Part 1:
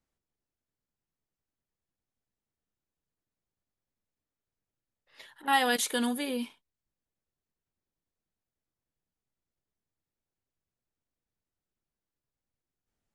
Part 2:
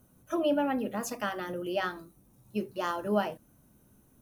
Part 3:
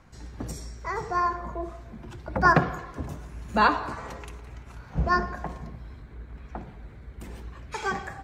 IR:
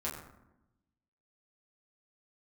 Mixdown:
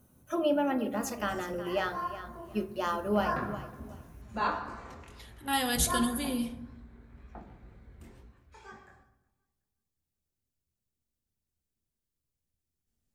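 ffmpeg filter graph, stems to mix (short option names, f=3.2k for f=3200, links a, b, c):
-filter_complex "[0:a]equalizer=f=1.1k:w=0.34:g=-12.5,volume=2.5dB,asplit=2[a][b];[b]volume=-6.5dB[c];[1:a]volume=-2dB,asplit=4[d][e][f][g];[e]volume=-11dB[h];[f]volume=-12dB[i];[2:a]flanger=delay=18:depth=7.4:speed=2,adelay=800,volume=-10dB,afade=t=out:st=7.96:d=0.42:silence=0.281838,asplit=3[j][k][l];[k]volume=-5dB[m];[l]volume=-23.5dB[n];[g]apad=whole_len=398432[o];[j][o]sidechaincompress=threshold=-38dB:ratio=8:attack=48:release=1460[p];[3:a]atrim=start_sample=2205[q];[c][h][m]amix=inputs=3:normalize=0[r];[r][q]afir=irnorm=-1:irlink=0[s];[i][n]amix=inputs=2:normalize=0,aecho=0:1:367|734|1101|1468:1|0.25|0.0625|0.0156[t];[a][d][p][s][t]amix=inputs=5:normalize=0"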